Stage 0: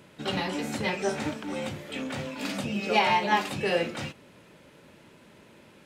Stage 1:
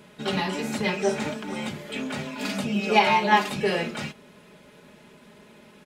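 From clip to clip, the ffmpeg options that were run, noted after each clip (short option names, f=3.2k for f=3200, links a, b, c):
-af "aecho=1:1:4.8:0.58,volume=1.5dB"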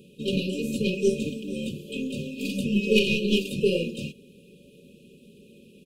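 -af "aeval=exprs='0.501*(cos(1*acos(clip(val(0)/0.501,-1,1)))-cos(1*PI/2))+0.0126*(cos(5*acos(clip(val(0)/0.501,-1,1)))-cos(5*PI/2))+0.0158*(cos(6*acos(clip(val(0)/0.501,-1,1)))-cos(6*PI/2))+0.0355*(cos(7*acos(clip(val(0)/0.501,-1,1)))-cos(7*PI/2))':c=same,equalizer=f=5.3k:t=o:w=1.4:g=-7.5,afftfilt=real='re*(1-between(b*sr/4096,580,2400))':imag='im*(1-between(b*sr/4096,580,2400))':win_size=4096:overlap=0.75,volume=5dB"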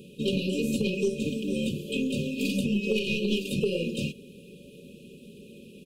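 -af "acompressor=threshold=-27dB:ratio=10,volume=4dB"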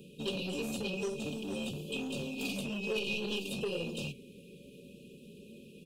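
-filter_complex "[0:a]flanger=delay=6.1:depth=9.8:regen=78:speed=0.51:shape=sinusoidal,acrossover=split=500|3400[a][b][c];[a]asoftclip=type=tanh:threshold=-37dB[d];[d][b][c]amix=inputs=3:normalize=0"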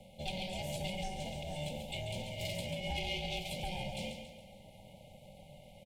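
-af "aeval=exprs='val(0)*sin(2*PI*370*n/s)':c=same,asuperstop=centerf=1200:order=4:qfactor=1.1,aecho=1:1:139|278|417|556|695:0.422|0.194|0.0892|0.041|0.0189"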